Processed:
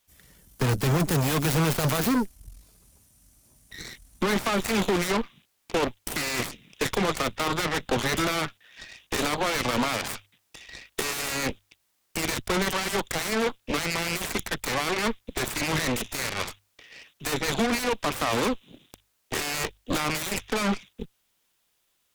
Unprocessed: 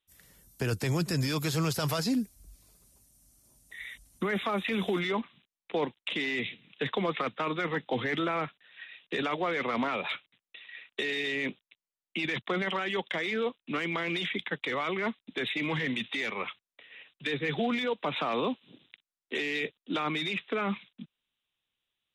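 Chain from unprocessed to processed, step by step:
stylus tracing distortion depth 0.35 ms
low-shelf EQ 120 Hz +7 dB
mains-hum notches 50/100 Hz
in parallel at −6 dB: gain into a clipping stage and back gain 28 dB
on the sum: bit-depth reduction 12 bits, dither triangular
harmonic generator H 8 −11 dB, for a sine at −15.5 dBFS

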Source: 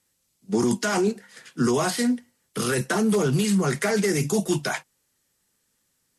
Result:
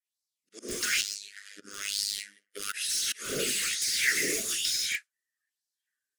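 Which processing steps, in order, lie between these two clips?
noise reduction from a noise print of the clip's start 24 dB
reverb whose tail is shaped and stops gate 220 ms flat, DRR −6 dB
volume swells 256 ms
auto-filter high-pass sine 1.1 Hz 610–4,600 Hz
in parallel at −9.5 dB: wrap-around overflow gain 21 dB
0:01.01–0:02.74: on the sum: phases set to zero 101 Hz
harmonic and percussive parts rebalanced harmonic −15 dB
Butterworth band-reject 860 Hz, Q 0.68

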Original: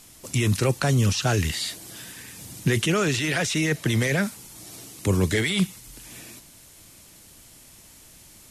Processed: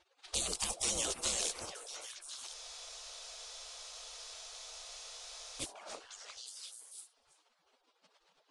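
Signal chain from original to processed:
pitch shifter gated in a rhythm +2.5 semitones, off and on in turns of 346 ms
gate on every frequency bin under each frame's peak −25 dB weak
parametric band 1,800 Hz −12.5 dB 1.4 octaves
downward compressor 4 to 1, threshold −46 dBFS, peak gain reduction 11 dB
low-pass that shuts in the quiet parts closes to 2,800 Hz, open at −47 dBFS
on a send: echo through a band-pass that steps 352 ms, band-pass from 620 Hz, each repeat 1.4 octaves, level −3 dB
on the sum: downsampling to 22,050 Hz
frozen spectrum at 0:02.55, 3.05 s
level +13.5 dB

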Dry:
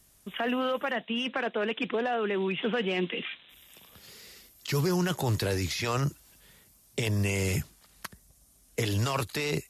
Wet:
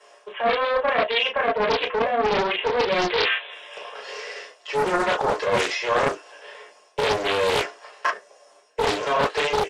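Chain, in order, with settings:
Chebyshev band-pass filter 490–8,800 Hz, order 4
high-shelf EQ 5,200 Hz −7 dB
on a send: ambience of single reflections 19 ms −7.5 dB, 33 ms −3.5 dB, 43 ms −16 dB
on the sum: convolution reverb, pre-delay 3 ms, DRR −3.5 dB
reversed playback
downward compressor 20 to 1, threshold −22 dBFS, peak gain reduction 19 dB
reversed playback
highs frequency-modulated by the lows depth 0.64 ms
level +4.5 dB

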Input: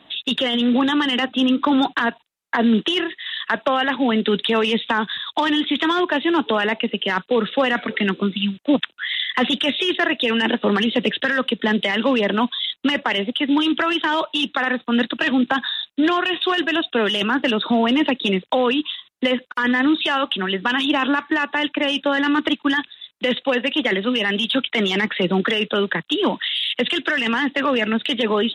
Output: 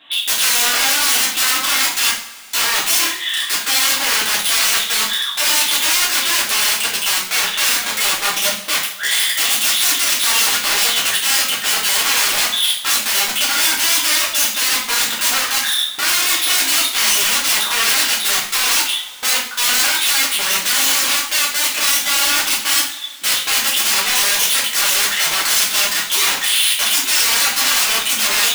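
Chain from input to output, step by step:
wrap-around overflow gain 18.5 dB
tilt shelving filter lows −9.5 dB, about 640 Hz
coupled-rooms reverb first 0.46 s, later 2.8 s, from −22 dB, DRR −6 dB
level −6.5 dB

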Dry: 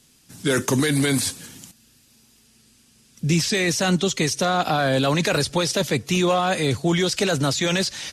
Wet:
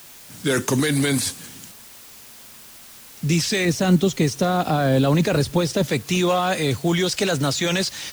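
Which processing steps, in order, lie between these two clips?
0:03.65–0:05.89: tilt shelving filter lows +5.5 dB, about 660 Hz
background noise white −44 dBFS

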